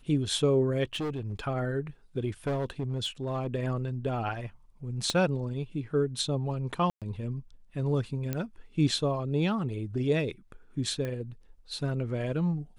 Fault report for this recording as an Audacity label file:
0.930000	1.440000	clipping −29 dBFS
2.470000	3.470000	clipping −26 dBFS
5.100000	5.100000	click −15 dBFS
6.900000	7.020000	drop-out 117 ms
8.330000	8.330000	click −17 dBFS
11.050000	11.050000	click −22 dBFS

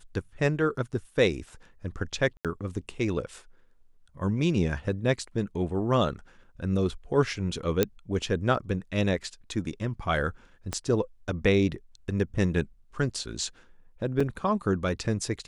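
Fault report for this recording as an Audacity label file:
2.370000	2.450000	drop-out 77 ms
7.830000	7.830000	click −8 dBFS
10.730000	10.730000	click −15 dBFS
14.200000	14.200000	drop-out 4.4 ms

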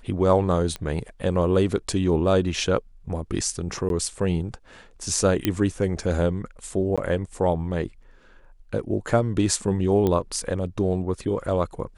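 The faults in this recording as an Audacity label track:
0.760000	0.760000	click −16 dBFS
3.890000	3.900000	drop-out 12 ms
5.450000	5.450000	click −7 dBFS
6.960000	6.980000	drop-out 16 ms
10.070000	10.070000	click −12 dBFS

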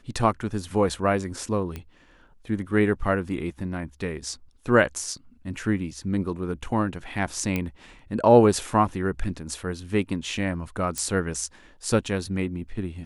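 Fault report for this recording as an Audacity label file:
1.760000	1.760000	click −20 dBFS
7.560000	7.560000	click −13 dBFS
10.980000	10.980000	click −14 dBFS

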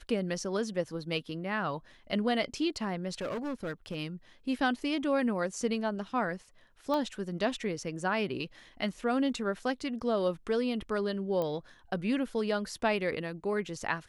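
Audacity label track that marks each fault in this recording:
3.210000	3.960000	clipping −31.5 dBFS
6.940000	6.940000	click −21 dBFS
11.420000	11.420000	click −21 dBFS

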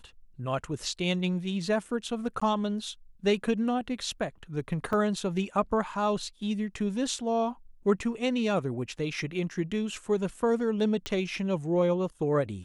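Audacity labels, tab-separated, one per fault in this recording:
2.400000	2.420000	drop-out 15 ms
4.930000	4.930000	drop-out 2.6 ms
11.060000	11.060000	click −17 dBFS

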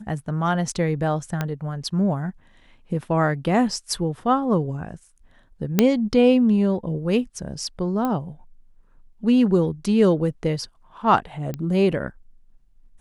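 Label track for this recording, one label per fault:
1.410000	1.410000	click −11 dBFS
5.790000	5.790000	click −2 dBFS
8.050000	8.050000	click −13 dBFS
11.540000	11.540000	click −16 dBFS

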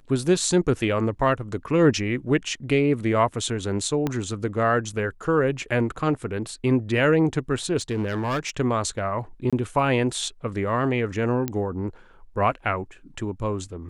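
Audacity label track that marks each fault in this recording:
4.070000	4.070000	click −12 dBFS
7.780000	8.500000	clipping −21.5 dBFS
9.500000	9.530000	drop-out 26 ms
11.480000	11.480000	click −12 dBFS

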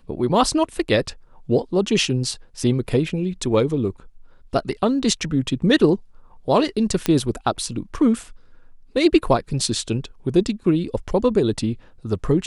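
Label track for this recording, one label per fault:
7.060000	7.060000	click −5 dBFS

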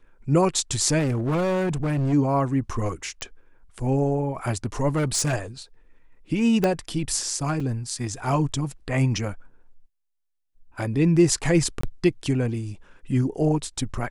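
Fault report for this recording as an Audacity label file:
0.980000	2.140000	clipping −20.5 dBFS
3.210000	3.210000	click −19 dBFS
4.960000	5.340000	clipping −18.5 dBFS
6.640000	6.640000	click −9 dBFS
7.600000	7.600000	drop-out 3.8 ms
11.810000	11.830000	drop-out 24 ms

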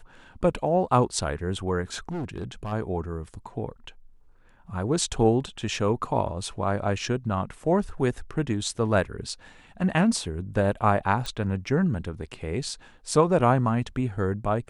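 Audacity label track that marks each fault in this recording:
2.110000	2.730000	clipping −28 dBFS
11.260000	11.260000	click

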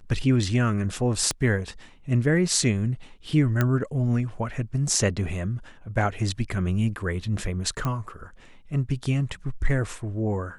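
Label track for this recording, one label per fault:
1.310000	1.310000	click −11 dBFS
3.610000	3.610000	click −10 dBFS
7.850000	7.850000	click −15 dBFS

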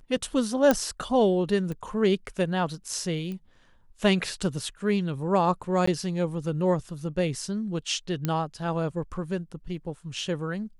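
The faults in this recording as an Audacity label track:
0.710000	0.710000	click −8 dBFS
1.720000	1.720000	click −23 dBFS
3.320000	3.320000	click −25 dBFS
5.860000	5.870000	drop-out 14 ms
8.250000	8.250000	click −13 dBFS

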